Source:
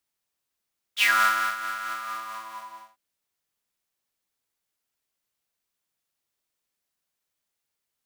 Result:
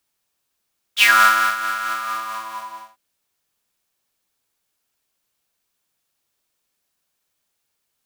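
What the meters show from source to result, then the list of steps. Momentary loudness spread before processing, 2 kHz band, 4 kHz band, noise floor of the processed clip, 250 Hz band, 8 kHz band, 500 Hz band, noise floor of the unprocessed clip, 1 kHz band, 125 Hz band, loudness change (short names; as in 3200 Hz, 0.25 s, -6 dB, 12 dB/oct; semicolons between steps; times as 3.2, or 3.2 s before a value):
19 LU, +7.5 dB, +8.0 dB, -75 dBFS, +8.0 dB, +8.0 dB, +8.0 dB, -83 dBFS, +8.0 dB, n/a, +8.0 dB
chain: notch 2000 Hz, Q 21; gain +8 dB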